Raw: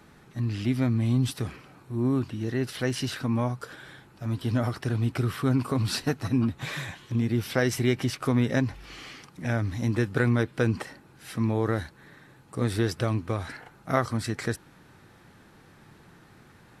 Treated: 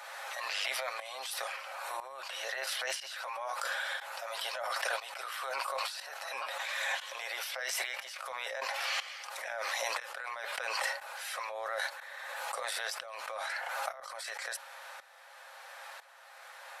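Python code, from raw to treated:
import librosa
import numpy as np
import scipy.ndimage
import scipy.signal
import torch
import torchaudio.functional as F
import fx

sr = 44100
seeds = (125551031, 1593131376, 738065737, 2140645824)

y = scipy.signal.sosfilt(scipy.signal.cheby1(6, 1.0, 540.0, 'highpass', fs=sr, output='sos'), x)
y = y + 0.36 * np.pad(y, (int(7.4 * sr / 1000.0), 0))[:len(y)]
y = fx.over_compress(y, sr, threshold_db=-43.0, ratio=-1.0)
y = fx.tremolo_shape(y, sr, shape='saw_up', hz=1.0, depth_pct=85)
y = fx.pre_swell(y, sr, db_per_s=22.0)
y = F.gain(torch.from_numpy(y), 6.5).numpy()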